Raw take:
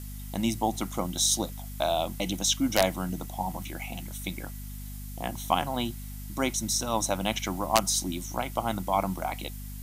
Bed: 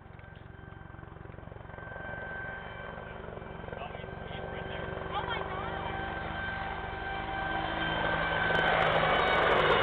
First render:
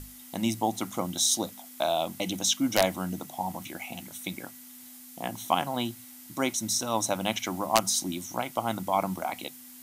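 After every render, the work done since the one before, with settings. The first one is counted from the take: hum notches 50/100/150/200 Hz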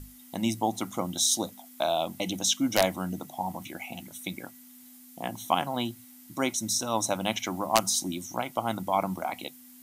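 noise reduction 6 dB, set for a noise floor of -48 dBFS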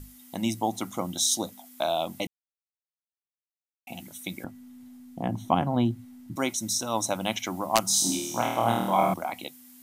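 2.27–3.87 s: mute; 4.44–6.36 s: tilt EQ -4 dB/octave; 7.87–9.14 s: flutter echo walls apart 4.4 m, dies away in 0.86 s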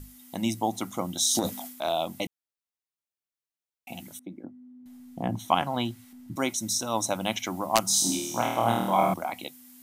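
1.27–1.93 s: transient shaper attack -6 dB, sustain +11 dB; 4.19–4.86 s: band-pass filter 300 Hz, Q 1.7; 5.39–6.13 s: tilt shelf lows -8.5 dB, about 730 Hz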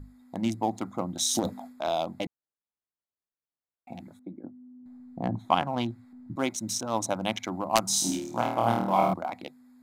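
local Wiener filter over 15 samples; treble shelf 7.4 kHz -5 dB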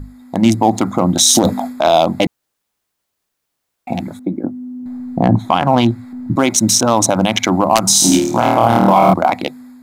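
level rider gain up to 6.5 dB; loudness maximiser +14.5 dB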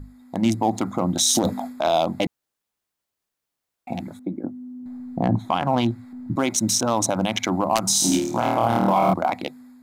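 trim -8.5 dB

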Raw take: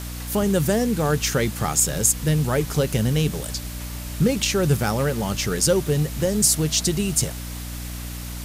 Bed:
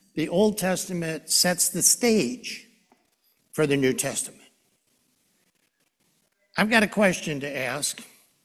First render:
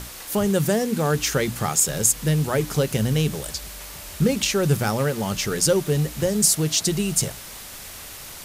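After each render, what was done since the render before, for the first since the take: hum notches 60/120/180/240/300 Hz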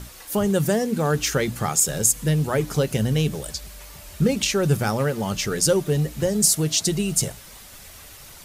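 noise reduction 7 dB, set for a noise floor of -39 dBFS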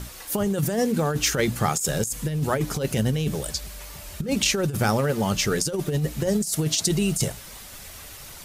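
compressor with a negative ratio -22 dBFS, ratio -0.5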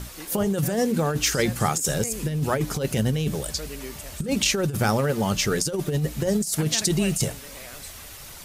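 add bed -16 dB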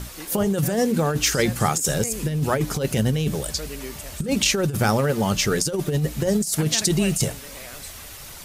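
trim +2 dB

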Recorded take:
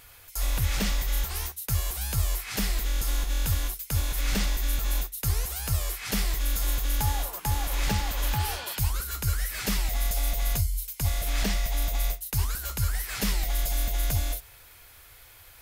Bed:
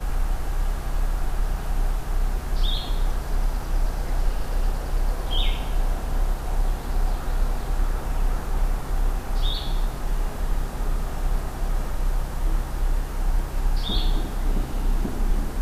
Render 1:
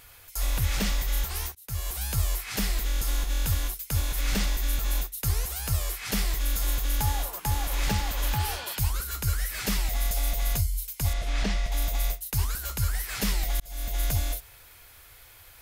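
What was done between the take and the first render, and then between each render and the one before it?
1.55–1.96 s: fade in, from -22.5 dB; 11.13–11.72 s: distance through air 81 m; 13.60–14.01 s: fade in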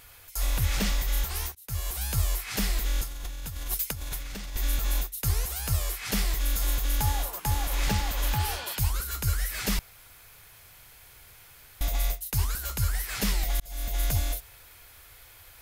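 3.01–4.56 s: compressor with a negative ratio -34 dBFS; 9.79–11.81 s: room tone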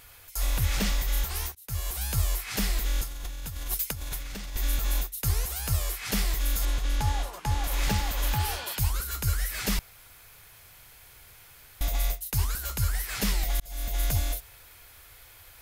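6.65–7.64 s: distance through air 56 m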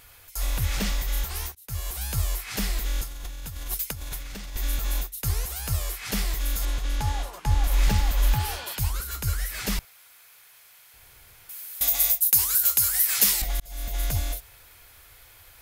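7.45–8.39 s: bass shelf 74 Hz +10 dB; 9.85–10.94 s: high-pass 1 kHz 6 dB/octave; 11.49–13.42 s: RIAA curve recording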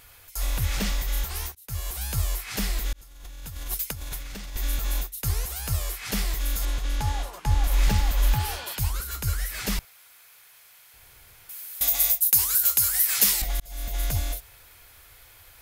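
2.93–3.60 s: fade in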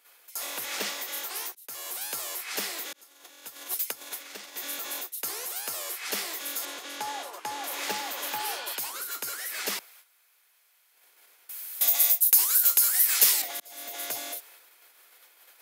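gate -50 dBFS, range -12 dB; high-pass 320 Hz 24 dB/octave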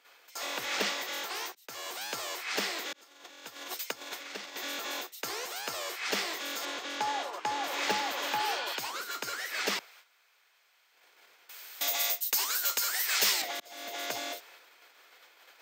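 boxcar filter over 4 samples; in parallel at -7.5 dB: integer overflow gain 20 dB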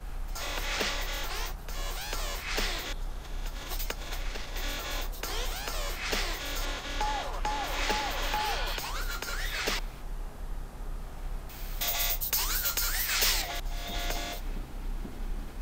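add bed -13 dB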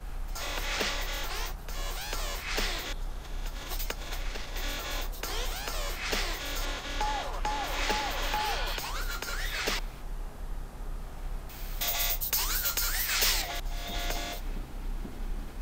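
no audible change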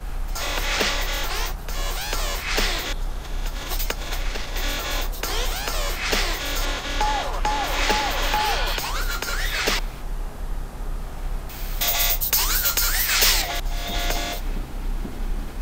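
trim +8.5 dB

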